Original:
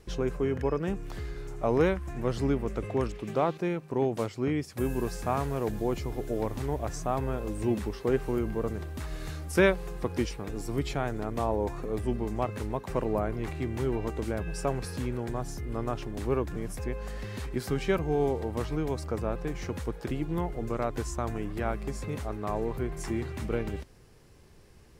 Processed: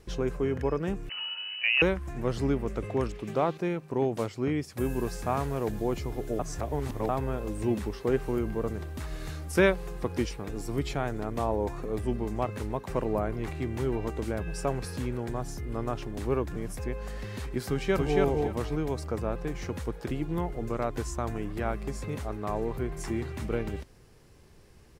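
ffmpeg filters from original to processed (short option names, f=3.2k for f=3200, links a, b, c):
-filter_complex "[0:a]asettb=1/sr,asplit=3[a][b][c];[a]atrim=end=1.094[d];[b]atrim=start=1.09:end=1.82,asetpts=PTS-STARTPTS,afade=t=in:d=0.004:c=qsin,afade=t=out:st=0.726:d=0.004:c=qsin,lowpass=f=2.6k:t=q:w=0.5098,lowpass=f=2.6k:t=q:w=0.6013,lowpass=f=2.6k:t=q:w=0.9,lowpass=f=2.6k:t=q:w=2.563,afreqshift=-3000[e];[c]atrim=start=1.816[f];[d][e]acrossfade=d=0.004:c1=hsin:c2=qsin[g];[g][f]acrossfade=d=0.004:c1=qsin:c2=hsin,asplit=2[h][i];[i]afade=t=in:st=17.67:d=0.01,afade=t=out:st=18.19:d=0.01,aecho=0:1:280|560|840:0.841395|0.168279|0.0336558[j];[h][j]amix=inputs=2:normalize=0,asplit=3[k][l][m];[k]atrim=end=6.392[n];[l]atrim=start=6.388:end=7.092,asetpts=PTS-STARTPTS,areverse[o];[m]atrim=start=7.088[p];[n][o]acrossfade=d=0.004:c1=hsin:c2=hsin[q];[q][p]acrossfade=d=0.004:c1=hsin:c2=hsin"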